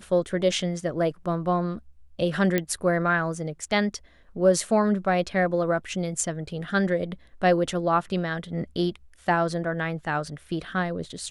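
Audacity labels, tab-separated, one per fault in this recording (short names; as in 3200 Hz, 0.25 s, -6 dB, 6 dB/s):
2.580000	2.580000	pop -10 dBFS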